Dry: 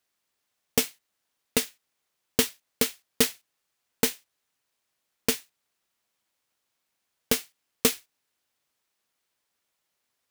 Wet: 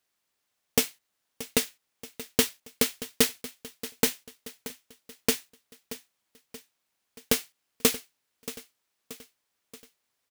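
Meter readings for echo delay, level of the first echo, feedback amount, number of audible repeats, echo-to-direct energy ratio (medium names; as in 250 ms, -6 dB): 629 ms, -15.5 dB, 53%, 4, -14.0 dB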